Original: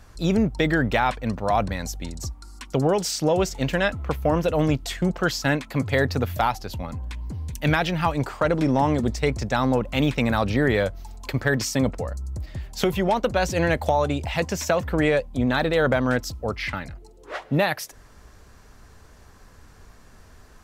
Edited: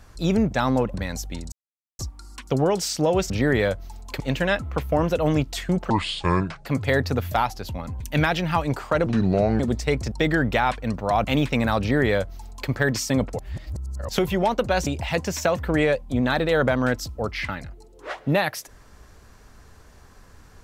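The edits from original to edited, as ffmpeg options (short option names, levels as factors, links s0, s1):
-filter_complex "[0:a]asplit=16[s0][s1][s2][s3][s4][s5][s6][s7][s8][s9][s10][s11][s12][s13][s14][s15];[s0]atrim=end=0.512[s16];[s1]atrim=start=9.468:end=9.902[s17];[s2]atrim=start=1.638:end=2.22,asetpts=PTS-STARTPTS,afade=t=out:st=0.578:d=0.004:c=hsin,apad=pad_dur=0.47[s18];[s3]atrim=start=2.22:end=3.532,asetpts=PTS-STARTPTS,afade=t=in:d=0.004:c=hsin[s19];[s4]atrim=start=10.448:end=11.352[s20];[s5]atrim=start=3.528:end=5.234[s21];[s6]atrim=start=5.23:end=5.71,asetpts=PTS-STARTPTS,asetrate=27783,aresample=44100[s22];[s7]atrim=start=5.706:end=7.052[s23];[s8]atrim=start=7.498:end=8.564[s24];[s9]atrim=start=8.56:end=8.95,asetpts=PTS-STARTPTS,asetrate=32193,aresample=44100,atrim=end_sample=23560,asetpts=PTS-STARTPTS[s25];[s10]atrim=start=8.946:end=9.472[s26];[s11]atrim=start=0.508:end=1.642[s27];[s12]atrim=start=9.898:end=12.042[s28];[s13]atrim=start=12.038:end=12.742,asetpts=PTS-STARTPTS,areverse[s29];[s14]atrim=start=12.738:end=13.522[s30];[s15]atrim=start=14.108[s31];[s16][s17]acrossfade=d=0.004:c1=hsin:c2=hsin[s32];[s18][s19]concat=n=2:v=0:a=1[s33];[s32][s33]acrossfade=d=0.004:c1=hsin:c2=hsin[s34];[s34][s20]acrossfade=d=0.004:c1=hsin:c2=hsin[s35];[s35][s21]acrossfade=d=0.004:c1=hsin:c2=hsin[s36];[s36][s22]acrossfade=d=0.004:c1=hsin:c2=hsin[s37];[s37][s23]acrossfade=d=0.004:c1=hsin:c2=hsin[s38];[s38][s24]acrossfade=d=0.004:c1=hsin:c2=hsin[s39];[s39][s25]acrossfade=d=0.004:c1=hsin:c2=hsin[s40];[s40][s26]acrossfade=d=0.004:c1=hsin:c2=hsin[s41];[s41][s27]acrossfade=d=0.004:c1=hsin:c2=hsin[s42];[s42][s28]acrossfade=d=0.004:c1=hsin:c2=hsin[s43];[s43][s29]acrossfade=d=0.004:c1=hsin:c2=hsin[s44];[s44][s30]acrossfade=d=0.004:c1=hsin:c2=hsin[s45];[s45][s31]acrossfade=d=0.004:c1=hsin:c2=hsin"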